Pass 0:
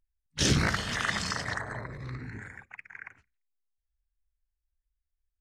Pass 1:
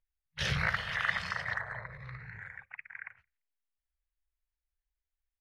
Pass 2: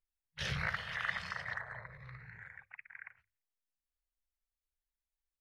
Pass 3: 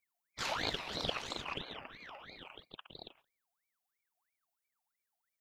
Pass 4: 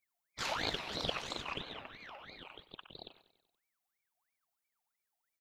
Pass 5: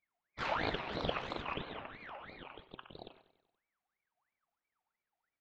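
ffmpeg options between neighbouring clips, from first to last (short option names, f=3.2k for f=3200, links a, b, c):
-af "firequalizer=gain_entry='entry(170,0);entry(260,-26);entry(500,1);entry(1000,3);entry(1900,8);entry(7500,-15);entry(11000,-4)':delay=0.05:min_phase=1,volume=-7dB"
-af "bandreject=f=50:t=h:w=6,bandreject=f=100:t=h:w=6,volume=-5.5dB"
-af "highshelf=f=7.7k:g=9,aeval=exprs='val(0)*sin(2*PI*1500*n/s+1500*0.55/3*sin(2*PI*3*n/s))':c=same,volume=2.5dB"
-af "aecho=1:1:95|190|285|380|475:0.141|0.0805|0.0459|0.0262|0.0149"
-af "lowpass=2.2k,bandreject=f=128.8:t=h:w=4,bandreject=f=257.6:t=h:w=4,bandreject=f=386.4:t=h:w=4,bandreject=f=515.2:t=h:w=4,bandreject=f=644:t=h:w=4,bandreject=f=772.8:t=h:w=4,bandreject=f=901.6:t=h:w=4,bandreject=f=1.0304k:t=h:w=4,bandreject=f=1.1592k:t=h:w=4,bandreject=f=1.288k:t=h:w=4,bandreject=f=1.4168k:t=h:w=4,bandreject=f=1.5456k:t=h:w=4,bandreject=f=1.6744k:t=h:w=4,bandreject=f=1.8032k:t=h:w=4,bandreject=f=1.932k:t=h:w=4,bandreject=f=2.0608k:t=h:w=4,bandreject=f=2.1896k:t=h:w=4,bandreject=f=2.3184k:t=h:w=4,bandreject=f=2.4472k:t=h:w=4,bandreject=f=2.576k:t=h:w=4,bandreject=f=2.7048k:t=h:w=4,bandreject=f=2.8336k:t=h:w=4,bandreject=f=2.9624k:t=h:w=4,bandreject=f=3.0912k:t=h:w=4,bandreject=f=3.22k:t=h:w=4,bandreject=f=3.3488k:t=h:w=4,volume=3.5dB"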